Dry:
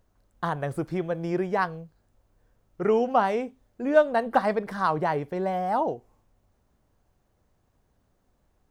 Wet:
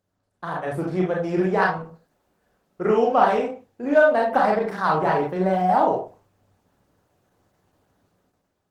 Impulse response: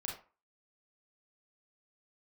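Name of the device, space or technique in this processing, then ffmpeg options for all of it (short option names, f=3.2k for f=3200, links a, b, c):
far-field microphone of a smart speaker: -filter_complex "[0:a]asplit=3[a][b][c];[a]afade=t=out:st=1.73:d=0.02[d];[b]bandreject=f=50:t=h:w=6,bandreject=f=100:t=h:w=6,bandreject=f=150:t=h:w=6,afade=t=in:st=1.73:d=0.02,afade=t=out:st=2.84:d=0.02[e];[c]afade=t=in:st=2.84:d=0.02[f];[d][e][f]amix=inputs=3:normalize=0[g];[1:a]atrim=start_sample=2205[h];[g][h]afir=irnorm=-1:irlink=0,highpass=130,dynaudnorm=f=150:g=9:m=11.5dB,volume=-3dB" -ar 48000 -c:a libopus -b:a 16k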